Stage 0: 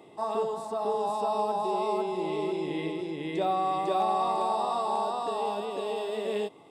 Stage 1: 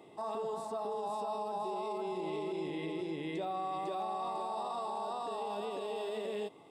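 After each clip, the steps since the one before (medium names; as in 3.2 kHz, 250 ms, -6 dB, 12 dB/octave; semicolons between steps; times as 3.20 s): peak limiter -26.5 dBFS, peak gain reduction 8 dB; trim -3.5 dB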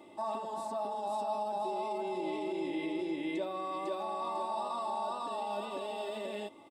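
comb 3.4 ms, depth 72%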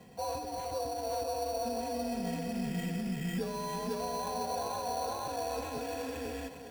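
thinning echo 394 ms, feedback 54%, high-pass 230 Hz, level -9.5 dB; frequency shift -140 Hz; sample-rate reducer 5.1 kHz, jitter 0%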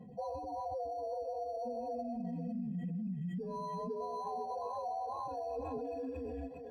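spectral contrast enhancement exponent 2.1; phaser 0.35 Hz, delay 2.6 ms, feedback 31%; compression, threshold -36 dBFS, peak gain reduction 7.5 dB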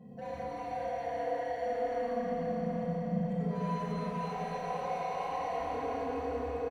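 saturation -39.5 dBFS, distortion -13 dB; feedback delay 778 ms, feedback 39%, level -9 dB; reverberation RT60 4.7 s, pre-delay 28 ms, DRR -9 dB; trim -1.5 dB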